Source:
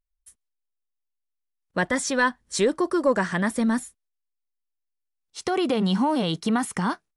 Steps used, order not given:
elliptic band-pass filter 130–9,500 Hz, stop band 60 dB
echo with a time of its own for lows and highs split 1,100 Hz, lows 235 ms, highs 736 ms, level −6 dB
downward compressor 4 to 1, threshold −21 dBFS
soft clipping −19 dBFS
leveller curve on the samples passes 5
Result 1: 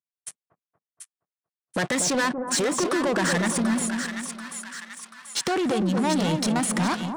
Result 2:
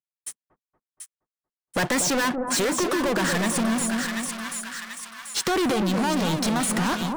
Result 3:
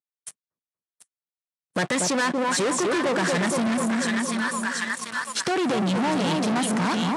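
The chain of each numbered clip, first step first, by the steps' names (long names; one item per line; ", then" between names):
leveller curve on the samples, then downward compressor, then elliptic band-pass filter, then soft clipping, then echo with a time of its own for lows and highs
elliptic band-pass filter, then soft clipping, then leveller curve on the samples, then echo with a time of its own for lows and highs, then downward compressor
echo with a time of its own for lows and highs, then leveller curve on the samples, then downward compressor, then soft clipping, then elliptic band-pass filter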